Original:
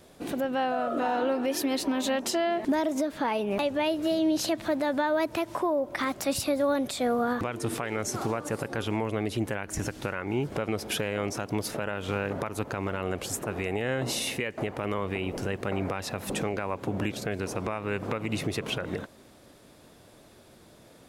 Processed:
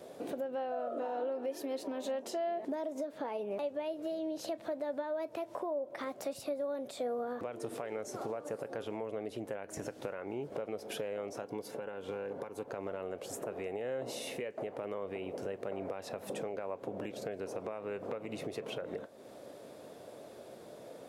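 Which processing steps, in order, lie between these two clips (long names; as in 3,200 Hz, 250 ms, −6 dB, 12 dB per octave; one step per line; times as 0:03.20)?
high-pass filter 110 Hz 12 dB per octave
parametric band 540 Hz +13 dB 1.2 octaves
downward compressor 2.5 to 1, threshold −40 dBFS, peak gain reduction 18.5 dB
0:11.42–0:12.68: notch comb filter 630 Hz
on a send: convolution reverb, pre-delay 3 ms, DRR 14.5 dB
on the sum: level −3 dB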